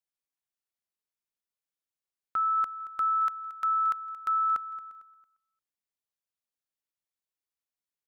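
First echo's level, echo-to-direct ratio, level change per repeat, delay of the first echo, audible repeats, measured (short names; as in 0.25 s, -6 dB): -16.0 dB, -15.5 dB, -9.5 dB, 0.226 s, 2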